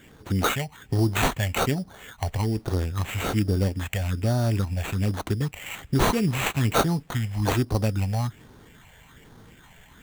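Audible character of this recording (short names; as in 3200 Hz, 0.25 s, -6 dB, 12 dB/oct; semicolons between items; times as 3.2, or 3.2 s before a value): phasing stages 6, 1.2 Hz, lowest notch 310–2500 Hz; aliases and images of a low sample rate 5100 Hz, jitter 0%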